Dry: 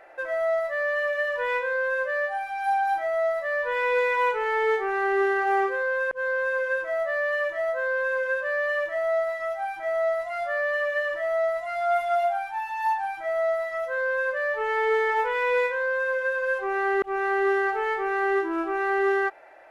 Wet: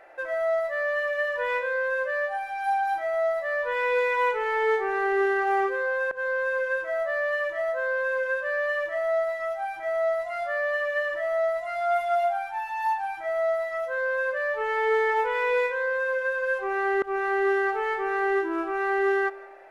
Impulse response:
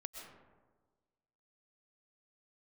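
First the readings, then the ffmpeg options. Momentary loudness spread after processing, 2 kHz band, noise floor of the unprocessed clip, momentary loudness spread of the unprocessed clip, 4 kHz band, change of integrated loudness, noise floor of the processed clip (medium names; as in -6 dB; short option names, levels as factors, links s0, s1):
5 LU, -1.0 dB, -36 dBFS, 4 LU, -1.0 dB, -0.5 dB, -36 dBFS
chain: -filter_complex "[0:a]asplit=2[s0][s1];[1:a]atrim=start_sample=2205,asetrate=40131,aresample=44100[s2];[s1][s2]afir=irnorm=-1:irlink=0,volume=0.335[s3];[s0][s3]amix=inputs=2:normalize=0,volume=0.75"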